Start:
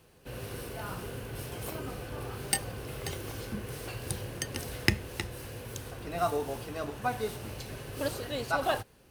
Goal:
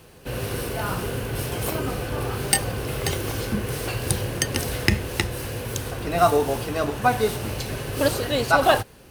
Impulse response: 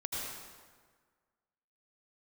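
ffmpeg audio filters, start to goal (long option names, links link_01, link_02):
-af "alimiter=level_in=11.5dB:limit=-1dB:release=50:level=0:latency=1"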